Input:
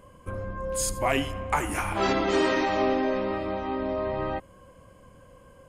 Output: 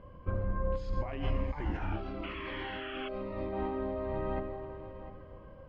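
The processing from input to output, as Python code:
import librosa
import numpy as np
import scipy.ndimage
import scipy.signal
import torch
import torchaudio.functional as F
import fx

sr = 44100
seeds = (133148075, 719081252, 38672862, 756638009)

y = fx.rev_plate(x, sr, seeds[0], rt60_s=2.9, hf_ratio=0.95, predelay_ms=0, drr_db=9.5)
y = fx.over_compress(y, sr, threshold_db=-31.0, ratio=-1.0)
y = scipy.signal.sosfilt(scipy.signal.butter(6, 4700.0, 'lowpass', fs=sr, output='sos'), y)
y = fx.low_shelf(y, sr, hz=90.0, db=8.0)
y = y + 10.0 ** (-14.0 / 20.0) * np.pad(y, (int(698 * sr / 1000.0), 0))[:len(y)]
y = fx.spec_paint(y, sr, seeds[1], shape='noise', start_s=2.23, length_s=0.86, low_hz=1000.0, high_hz=3400.0, level_db=-31.0)
y = fx.high_shelf(y, sr, hz=2400.0, db=-11.0)
y = fx.notch_cascade(y, sr, direction='falling', hz=1.0, at=(1.3, 3.53))
y = y * 10.0 ** (-5.5 / 20.0)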